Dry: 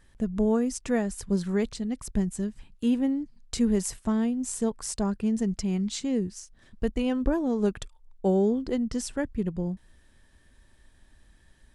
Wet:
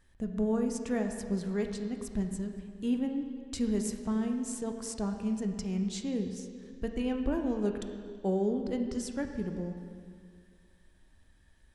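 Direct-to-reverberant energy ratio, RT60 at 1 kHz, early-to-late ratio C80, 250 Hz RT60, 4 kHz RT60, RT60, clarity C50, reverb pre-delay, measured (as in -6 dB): 4.5 dB, 2.1 s, 7.5 dB, 2.0 s, 1.9 s, 2.1 s, 6.0 dB, 8 ms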